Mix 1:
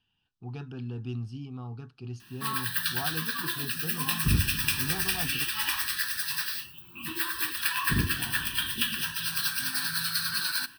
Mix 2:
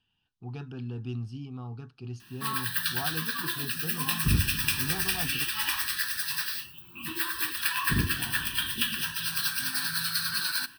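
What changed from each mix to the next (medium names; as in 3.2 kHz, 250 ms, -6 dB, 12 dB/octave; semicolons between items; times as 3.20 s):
no change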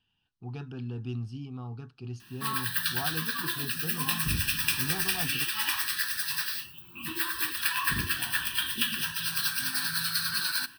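second sound -7.5 dB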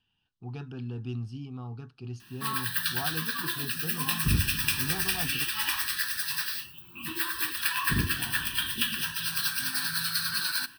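second sound +6.5 dB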